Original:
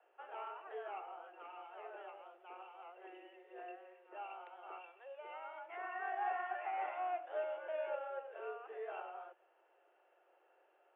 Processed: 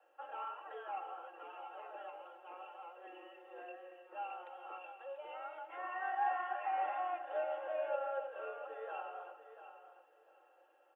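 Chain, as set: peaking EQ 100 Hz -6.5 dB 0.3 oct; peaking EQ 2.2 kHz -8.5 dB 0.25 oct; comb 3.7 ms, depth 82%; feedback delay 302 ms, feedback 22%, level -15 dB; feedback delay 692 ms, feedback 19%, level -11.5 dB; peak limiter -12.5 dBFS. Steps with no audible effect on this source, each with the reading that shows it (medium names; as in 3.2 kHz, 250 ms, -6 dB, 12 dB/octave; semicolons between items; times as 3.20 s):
peaking EQ 100 Hz: input has nothing below 300 Hz; peak limiter -12.5 dBFS: peak at its input -25.0 dBFS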